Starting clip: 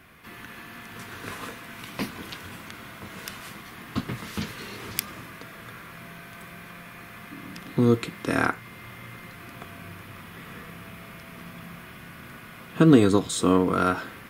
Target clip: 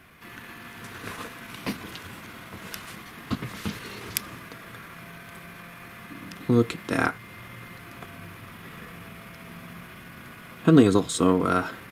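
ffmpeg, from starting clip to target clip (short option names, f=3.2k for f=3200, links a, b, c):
-af "aresample=32000,aresample=44100,atempo=1.2"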